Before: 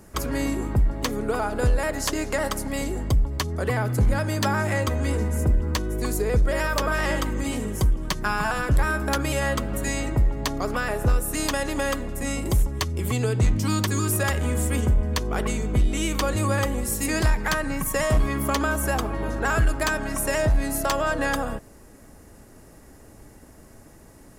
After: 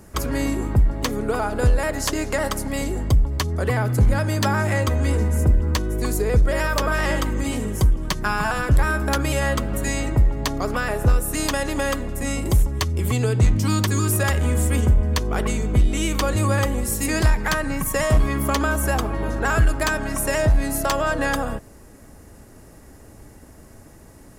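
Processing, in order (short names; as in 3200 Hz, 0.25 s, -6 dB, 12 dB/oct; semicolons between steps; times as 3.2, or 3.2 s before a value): bell 81 Hz +3 dB 1.4 oct; gain +2 dB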